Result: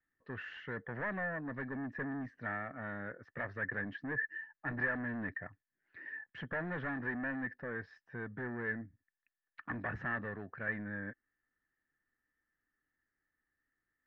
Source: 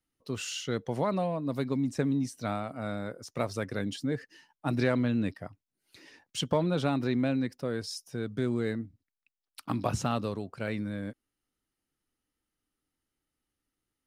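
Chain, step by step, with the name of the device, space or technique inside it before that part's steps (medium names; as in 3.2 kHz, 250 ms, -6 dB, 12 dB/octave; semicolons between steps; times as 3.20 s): overdriven synthesiser ladder filter (saturation -31 dBFS, distortion -8 dB; four-pole ladder low-pass 1.8 kHz, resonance 90%); trim +7 dB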